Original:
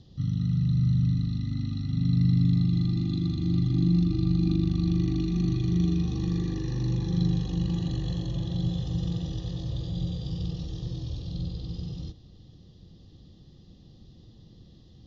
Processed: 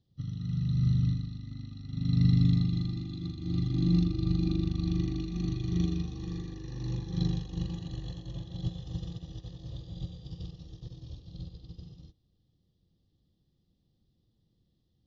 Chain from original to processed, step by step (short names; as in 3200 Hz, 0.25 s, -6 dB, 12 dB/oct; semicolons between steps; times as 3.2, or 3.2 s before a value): pre-echo 84 ms -21.5 dB; dynamic EQ 210 Hz, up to -4 dB, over -33 dBFS, Q 0.74; upward expander 2.5:1, over -40 dBFS; gain +4 dB